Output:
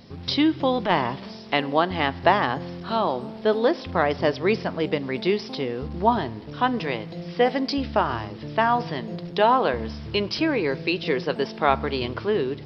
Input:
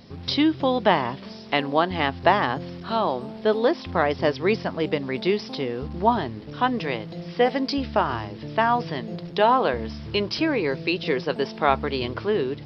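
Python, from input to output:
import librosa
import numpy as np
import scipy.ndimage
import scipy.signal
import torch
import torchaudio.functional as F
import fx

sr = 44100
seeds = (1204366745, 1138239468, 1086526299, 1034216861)

y = fx.transient(x, sr, attack_db=-10, sustain_db=2, at=(0.72, 1.36))
y = fx.rev_spring(y, sr, rt60_s=1.0, pass_ms=(40,), chirp_ms=50, drr_db=20.0)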